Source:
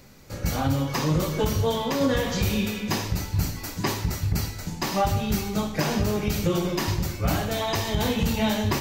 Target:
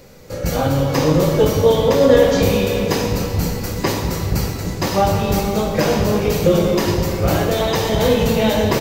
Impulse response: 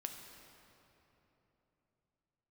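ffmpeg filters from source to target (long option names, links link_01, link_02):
-filter_complex "[0:a]equalizer=frequency=490:width=2.9:gain=11.5,asplit=7[link_01][link_02][link_03][link_04][link_05][link_06][link_07];[link_02]adelay=115,afreqshift=100,volume=-20.5dB[link_08];[link_03]adelay=230,afreqshift=200,volume=-24.4dB[link_09];[link_04]adelay=345,afreqshift=300,volume=-28.3dB[link_10];[link_05]adelay=460,afreqshift=400,volume=-32.1dB[link_11];[link_06]adelay=575,afreqshift=500,volume=-36dB[link_12];[link_07]adelay=690,afreqshift=600,volume=-39.9dB[link_13];[link_01][link_08][link_09][link_10][link_11][link_12][link_13]amix=inputs=7:normalize=0[link_14];[1:a]atrim=start_sample=2205[link_15];[link_14][link_15]afir=irnorm=-1:irlink=0,volume=8dB"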